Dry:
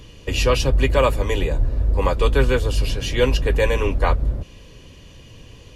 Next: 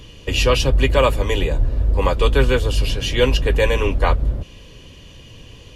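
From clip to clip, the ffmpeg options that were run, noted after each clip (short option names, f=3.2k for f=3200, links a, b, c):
-af "equalizer=f=3.1k:t=o:w=0.49:g=4,volume=1.5dB"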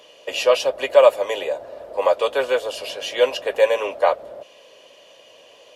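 -af "highpass=f=610:t=q:w=4.9,volume=-4.5dB"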